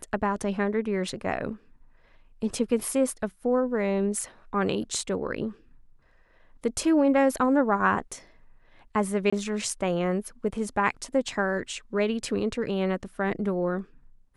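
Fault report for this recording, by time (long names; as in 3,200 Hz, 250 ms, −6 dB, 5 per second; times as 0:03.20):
0:09.30–0:09.32: drop-out 25 ms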